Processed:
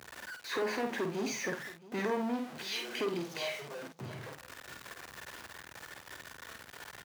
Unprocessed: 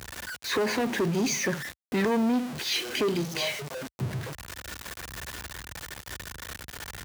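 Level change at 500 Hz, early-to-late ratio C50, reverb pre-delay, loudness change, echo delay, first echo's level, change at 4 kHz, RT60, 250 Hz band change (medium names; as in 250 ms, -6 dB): -6.5 dB, no reverb, no reverb, -8.0 dB, 50 ms, -6.0 dB, -9.0 dB, no reverb, -10.0 dB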